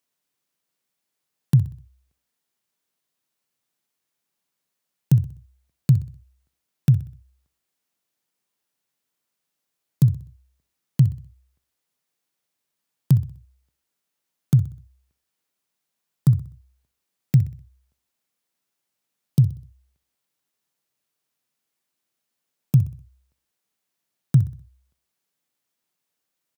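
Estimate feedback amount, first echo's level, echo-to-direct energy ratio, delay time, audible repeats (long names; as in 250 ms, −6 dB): 42%, −16.0 dB, −15.0 dB, 63 ms, 3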